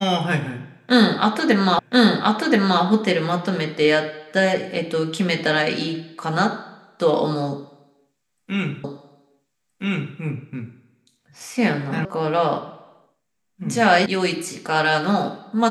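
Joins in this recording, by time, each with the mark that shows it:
1.79 repeat of the last 1.03 s
8.84 repeat of the last 1.32 s
12.05 sound cut off
14.06 sound cut off

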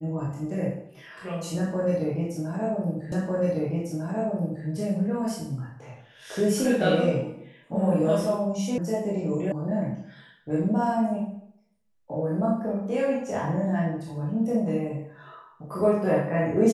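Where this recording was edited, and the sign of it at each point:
3.12 repeat of the last 1.55 s
8.78 sound cut off
9.52 sound cut off

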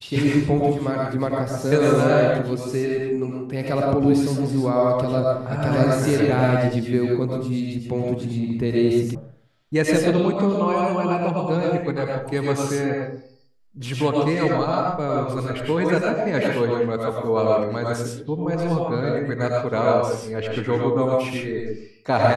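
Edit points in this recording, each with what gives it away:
9.15 sound cut off

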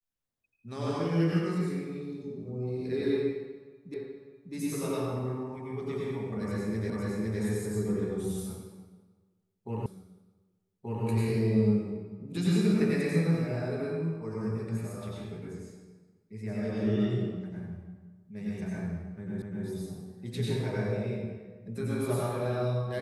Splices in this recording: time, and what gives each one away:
3.94 repeat of the last 0.6 s
6.9 repeat of the last 0.51 s
9.86 repeat of the last 1.18 s
19.42 repeat of the last 0.25 s

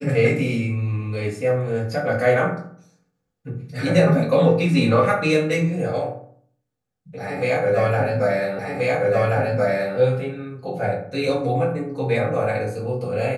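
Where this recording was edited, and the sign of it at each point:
8.59 repeat of the last 1.38 s

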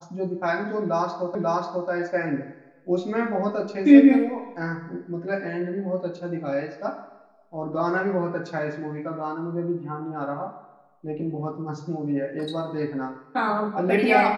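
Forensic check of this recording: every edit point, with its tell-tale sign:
1.35 repeat of the last 0.54 s

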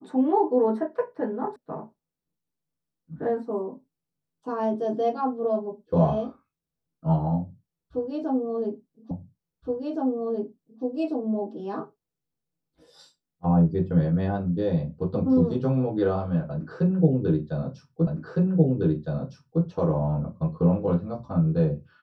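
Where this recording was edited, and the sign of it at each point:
1.56 sound cut off
9.11 repeat of the last 1.72 s
18.07 repeat of the last 1.56 s

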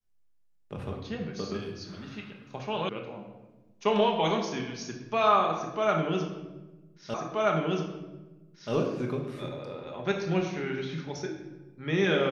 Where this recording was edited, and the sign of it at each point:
2.89 sound cut off
7.14 repeat of the last 1.58 s

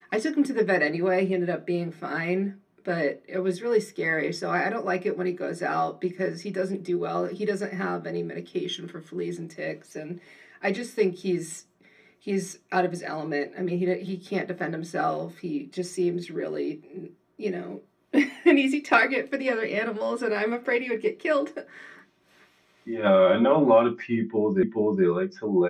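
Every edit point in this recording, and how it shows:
24.63 repeat of the last 0.42 s

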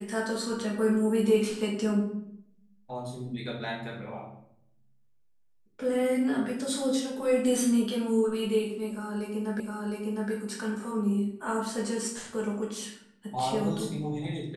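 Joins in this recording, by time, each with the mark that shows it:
9.6 repeat of the last 0.71 s

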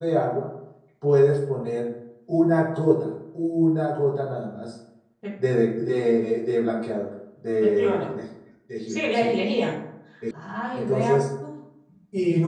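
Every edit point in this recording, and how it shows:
10.31 sound cut off

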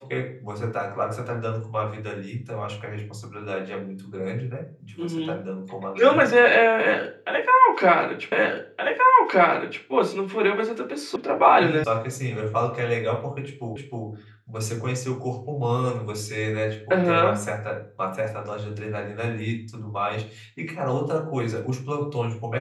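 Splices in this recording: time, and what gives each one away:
8.32 repeat of the last 1.52 s
11.16 sound cut off
11.84 sound cut off
13.76 repeat of the last 0.31 s

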